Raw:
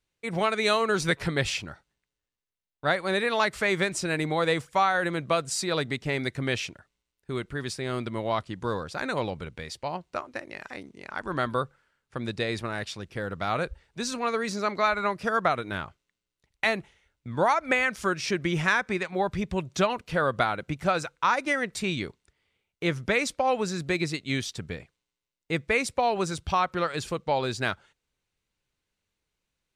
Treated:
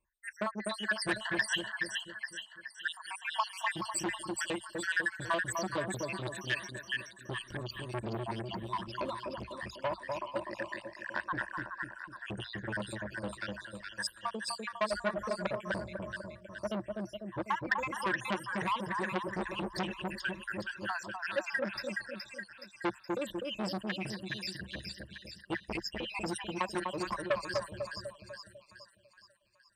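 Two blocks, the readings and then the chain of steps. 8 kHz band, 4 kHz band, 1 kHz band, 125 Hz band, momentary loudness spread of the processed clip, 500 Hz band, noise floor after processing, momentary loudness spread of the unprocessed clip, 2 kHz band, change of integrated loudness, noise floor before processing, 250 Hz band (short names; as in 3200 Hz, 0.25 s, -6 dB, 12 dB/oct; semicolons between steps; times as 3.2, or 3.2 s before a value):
-6.0 dB, -6.0 dB, -9.5 dB, -10.0 dB, 10 LU, -9.5 dB, -60 dBFS, 12 LU, -6.0 dB, -8.5 dB, under -85 dBFS, -7.5 dB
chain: random spectral dropouts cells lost 79%; compressor 2:1, threshold -32 dBFS, peak gain reduction 7 dB; ripple EQ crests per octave 1.3, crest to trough 15 dB; split-band echo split 1200 Hz, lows 0.249 s, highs 0.421 s, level -4 dB; core saturation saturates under 2100 Hz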